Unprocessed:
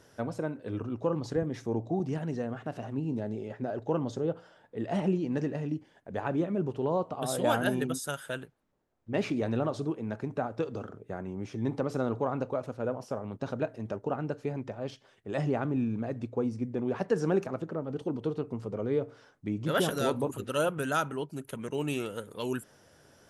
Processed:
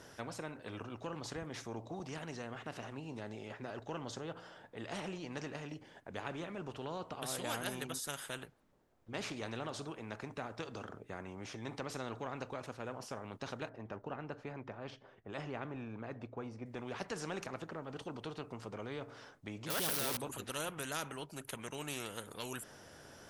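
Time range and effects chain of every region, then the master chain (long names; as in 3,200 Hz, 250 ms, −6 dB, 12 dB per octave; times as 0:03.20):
0:13.69–0:16.66: low-pass filter 1,600 Hz 6 dB per octave + one half of a high-frequency compander decoder only
0:19.70–0:20.17: spike at every zero crossing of −21.5 dBFS + parametric band 7,200 Hz −15 dB 0.22 octaves + envelope flattener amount 50%
whole clip: high-shelf EQ 9,200 Hz −4 dB; every bin compressed towards the loudest bin 2 to 1; level −5 dB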